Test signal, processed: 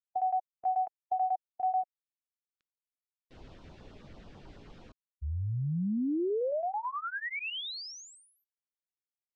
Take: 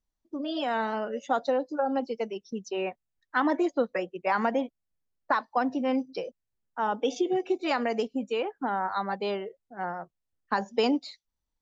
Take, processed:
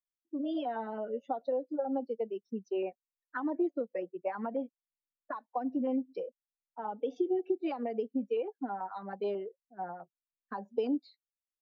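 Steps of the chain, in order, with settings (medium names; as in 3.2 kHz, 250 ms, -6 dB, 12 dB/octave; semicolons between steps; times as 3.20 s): bass shelf 150 Hz -5 dB; compression, threshold -28 dBFS; LFO notch saw down 9.2 Hz 710–2500 Hz; distance through air 130 m; spectral contrast expander 1.5:1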